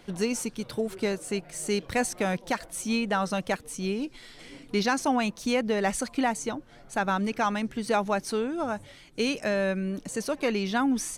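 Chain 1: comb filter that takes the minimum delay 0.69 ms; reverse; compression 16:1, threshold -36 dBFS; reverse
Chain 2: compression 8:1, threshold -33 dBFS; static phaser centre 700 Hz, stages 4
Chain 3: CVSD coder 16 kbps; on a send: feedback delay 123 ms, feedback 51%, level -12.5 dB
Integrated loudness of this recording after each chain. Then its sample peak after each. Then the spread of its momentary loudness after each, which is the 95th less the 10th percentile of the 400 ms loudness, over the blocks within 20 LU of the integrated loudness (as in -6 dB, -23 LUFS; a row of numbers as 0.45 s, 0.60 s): -41.0 LUFS, -41.5 LUFS, -29.5 LUFS; -27.0 dBFS, -26.0 dBFS, -13.0 dBFS; 4 LU, 6 LU, 8 LU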